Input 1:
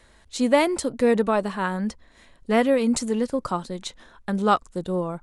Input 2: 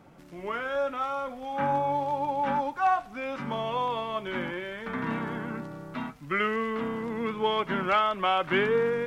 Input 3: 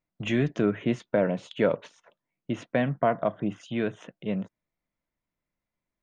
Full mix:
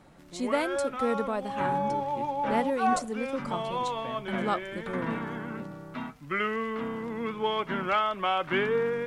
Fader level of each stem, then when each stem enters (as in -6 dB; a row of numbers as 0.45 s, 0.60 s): -9.5 dB, -2.0 dB, -16.5 dB; 0.00 s, 0.00 s, 1.30 s